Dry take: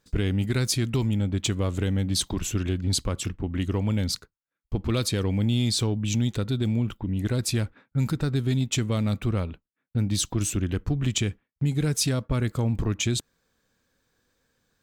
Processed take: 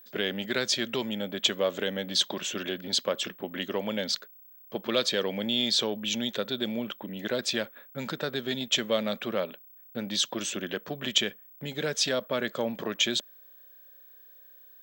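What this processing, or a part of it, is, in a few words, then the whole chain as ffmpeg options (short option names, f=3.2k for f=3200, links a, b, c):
old television with a line whistle: -af "highpass=f=230:w=0.5412,highpass=f=230:w=1.3066,equalizer=f=290:t=q:w=4:g=-10,equalizer=f=580:t=q:w=4:g=10,equalizer=f=1.7k:t=q:w=4:g=7,equalizer=f=3.3k:t=q:w=4:g=9,lowpass=f=6.6k:w=0.5412,lowpass=f=6.6k:w=1.3066,aeval=exprs='val(0)+0.00316*sin(2*PI*15734*n/s)':c=same"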